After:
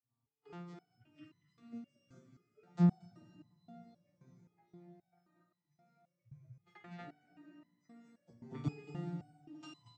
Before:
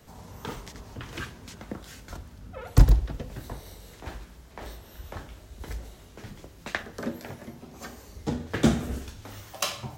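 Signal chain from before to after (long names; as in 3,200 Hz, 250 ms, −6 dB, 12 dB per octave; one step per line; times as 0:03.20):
vocoder with an arpeggio as carrier major triad, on A#2, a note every 251 ms
on a send: single-tap delay 232 ms −4.5 dB
on the sum: noise reduction from a noise print of the clip's start 25 dB
notch comb filter 540 Hz
dense smooth reverb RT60 5 s, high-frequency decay 0.95×, DRR 4.5 dB
step-sequenced resonator 3.8 Hz 130–1,000 Hz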